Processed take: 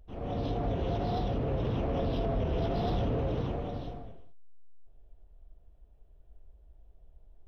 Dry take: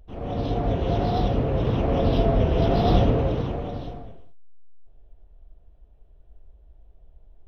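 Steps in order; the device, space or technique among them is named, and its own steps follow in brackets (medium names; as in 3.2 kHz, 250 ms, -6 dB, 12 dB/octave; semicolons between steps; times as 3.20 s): soft clipper into limiter (saturation -12 dBFS, distortion -20 dB; peak limiter -18.5 dBFS, peak gain reduction 6 dB); trim -5 dB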